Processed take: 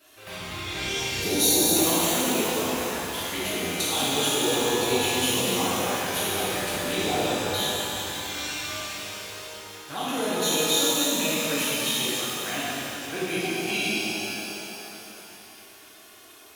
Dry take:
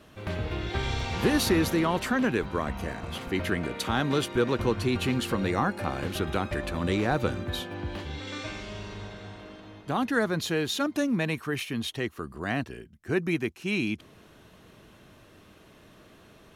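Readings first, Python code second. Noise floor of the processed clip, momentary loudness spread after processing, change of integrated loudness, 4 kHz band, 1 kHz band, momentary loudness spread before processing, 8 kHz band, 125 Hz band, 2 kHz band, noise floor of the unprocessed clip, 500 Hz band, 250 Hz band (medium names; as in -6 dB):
-49 dBFS, 15 LU, +4.0 dB, +10.5 dB, +3.0 dB, 11 LU, +16.0 dB, -5.5 dB, +3.0 dB, -55 dBFS, +2.0 dB, -1.0 dB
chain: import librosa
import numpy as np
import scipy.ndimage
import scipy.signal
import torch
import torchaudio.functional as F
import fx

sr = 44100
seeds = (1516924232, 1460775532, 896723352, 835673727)

y = fx.spec_erase(x, sr, start_s=1.2, length_s=0.53, low_hz=840.0, high_hz=3500.0)
y = fx.riaa(y, sr, side='recording')
y = fx.env_flanger(y, sr, rest_ms=3.3, full_db=-27.0)
y = fx.rev_shimmer(y, sr, seeds[0], rt60_s=3.3, semitones=12, shimmer_db=-8, drr_db=-10.5)
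y = y * 10.0 ** (-5.0 / 20.0)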